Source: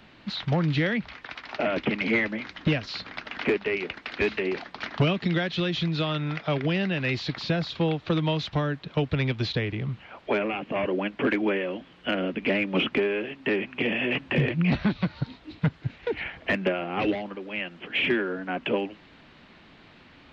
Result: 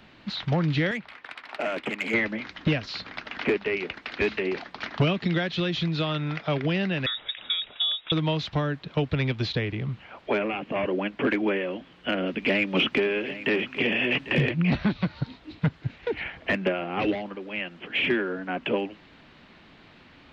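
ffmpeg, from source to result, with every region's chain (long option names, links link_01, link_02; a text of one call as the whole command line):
ffmpeg -i in.wav -filter_complex "[0:a]asettb=1/sr,asplit=3[link_01][link_02][link_03];[link_01]atrim=end=0.914[link_04];[link_02]atrim=start=0.91:end=2.14,asetpts=PTS-STARTPTS,afade=type=in:duration=0.004:curve=qsin,afade=type=out:start_time=1.226:duration=0.004:curve=qsin,highpass=frequency=200:poles=1,lowshelf=frequency=410:gain=-7,adynamicsmooth=sensitivity=3.5:basefreq=3600[link_05];[link_03]atrim=start=2.136[link_06];[link_04][link_05]acrossfade=duration=0.004:curve1=hsin:curve2=qsin[link_07];[link_07][link_06]acrossfade=duration=0.004:curve1=qsin:curve2=hsin,asettb=1/sr,asplit=3[link_08][link_09][link_10];[link_08]atrim=end=7.064[link_11];[link_09]atrim=start=7.06:end=8.12,asetpts=PTS-STARTPTS,afade=type=in:duration=0.004:curve=qsin,afade=type=out:start_time=1.056:duration=0.004:curve=qsin,equalizer=frequency=490:width_type=o:width=0.41:gain=11.5,acrossover=split=170|800|2300[link_12][link_13][link_14][link_15];[link_12]acompressor=threshold=-43dB:ratio=3[link_16];[link_13]acompressor=threshold=-29dB:ratio=3[link_17];[link_14]acompressor=threshold=-39dB:ratio=3[link_18];[link_15]acompressor=threshold=-51dB:ratio=3[link_19];[link_16][link_17][link_18][link_19]amix=inputs=4:normalize=0,lowpass=frequency=3300:width_type=q:width=0.5098,lowpass=frequency=3300:width_type=q:width=0.6013,lowpass=frequency=3300:width_type=q:width=0.9,lowpass=frequency=3300:width_type=q:width=2.563,afreqshift=-3900[link_20];[link_10]atrim=start=8.116[link_21];[link_11][link_20]acrossfade=duration=0.004:curve1=hsin:curve2=qsin[link_22];[link_22][link_21]acrossfade=duration=0.004:curve1=qsin:curve2=hsin,asettb=1/sr,asplit=3[link_23][link_24][link_25];[link_23]atrim=end=12.264[link_26];[link_24]atrim=start=12.26:end=14.51,asetpts=PTS-STARTPTS,afade=type=in:duration=0.004:curve=qsin,afade=type=out:start_time=2.246:duration=0.004:curve=qsin,highshelf=frequency=3400:gain=8.5,aecho=1:1:797:0.188,atrim=end_sample=99225[link_27];[link_25]atrim=start=14.506[link_28];[link_26][link_27]acrossfade=duration=0.004:curve1=hsin:curve2=qsin[link_29];[link_29][link_28]acrossfade=duration=0.004:curve1=qsin:curve2=hsin" out.wav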